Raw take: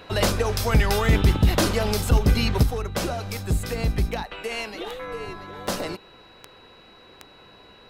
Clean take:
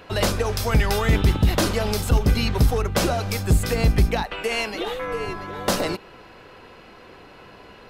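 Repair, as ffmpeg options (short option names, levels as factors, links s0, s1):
-af "adeclick=t=4,bandreject=f=3900:w=30,asetnsamples=n=441:p=0,asendcmd='2.63 volume volume 5.5dB',volume=1"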